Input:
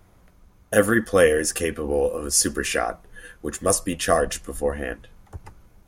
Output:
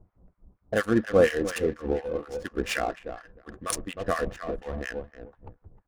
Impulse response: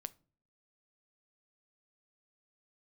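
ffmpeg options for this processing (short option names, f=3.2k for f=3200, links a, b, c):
-filter_complex "[0:a]asplit=2[a][b];[b]adelay=309,lowpass=f=4k:p=1,volume=-10dB,asplit=2[c][d];[d]adelay=309,lowpass=f=4k:p=1,volume=0.22,asplit=2[e][f];[f]adelay=309,lowpass=f=4k:p=1,volume=0.22[g];[a][c][e][g]amix=inputs=4:normalize=0,acrossover=split=1100[h][i];[h]aeval=exprs='val(0)*(1-1/2+1/2*cos(2*PI*4.2*n/s))':c=same[j];[i]aeval=exprs='val(0)*(1-1/2-1/2*cos(2*PI*4.2*n/s))':c=same[k];[j][k]amix=inputs=2:normalize=0,adynamicsmooth=sensitivity=6.5:basefreq=670"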